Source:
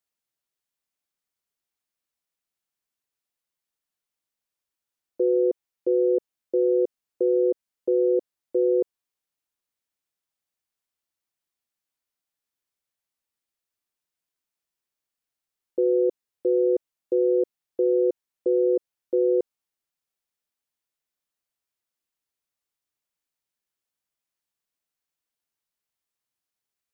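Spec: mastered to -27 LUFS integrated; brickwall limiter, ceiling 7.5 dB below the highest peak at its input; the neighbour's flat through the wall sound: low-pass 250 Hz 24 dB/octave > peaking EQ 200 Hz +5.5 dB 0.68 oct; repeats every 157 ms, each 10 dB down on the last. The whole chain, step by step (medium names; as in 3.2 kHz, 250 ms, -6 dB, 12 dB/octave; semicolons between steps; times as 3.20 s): peak limiter -22 dBFS; low-pass 250 Hz 24 dB/octave; peaking EQ 200 Hz +5.5 dB 0.68 oct; feedback delay 157 ms, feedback 32%, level -10 dB; trim +21 dB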